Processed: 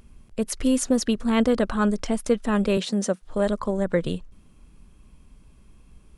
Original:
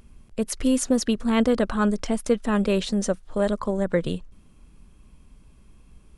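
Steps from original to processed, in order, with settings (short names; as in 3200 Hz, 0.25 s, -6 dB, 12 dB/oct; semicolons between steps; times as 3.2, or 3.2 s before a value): 2.77–3.22 HPF 150 Hz 24 dB/oct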